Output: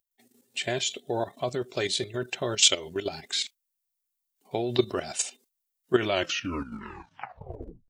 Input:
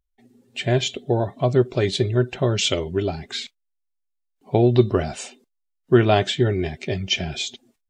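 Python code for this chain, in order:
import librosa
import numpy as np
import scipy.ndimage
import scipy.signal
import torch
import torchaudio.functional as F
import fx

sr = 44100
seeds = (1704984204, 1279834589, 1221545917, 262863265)

y = fx.tape_stop_end(x, sr, length_s=1.89)
y = fx.level_steps(y, sr, step_db=11)
y = fx.riaa(y, sr, side='recording')
y = F.gain(torch.from_numpy(y), -1.0).numpy()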